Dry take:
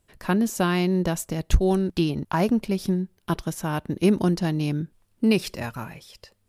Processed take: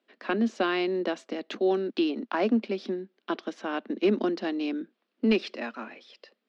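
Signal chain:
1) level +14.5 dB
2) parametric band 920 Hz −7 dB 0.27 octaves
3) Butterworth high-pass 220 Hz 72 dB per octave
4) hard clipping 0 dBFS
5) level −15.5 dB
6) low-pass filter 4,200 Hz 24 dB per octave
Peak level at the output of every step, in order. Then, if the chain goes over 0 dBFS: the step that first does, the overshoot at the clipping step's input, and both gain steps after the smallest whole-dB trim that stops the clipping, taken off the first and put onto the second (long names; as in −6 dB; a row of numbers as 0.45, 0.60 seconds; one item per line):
+6.5, +6.5, +7.5, 0.0, −15.5, −14.5 dBFS
step 1, 7.5 dB
step 1 +6.5 dB, step 5 −7.5 dB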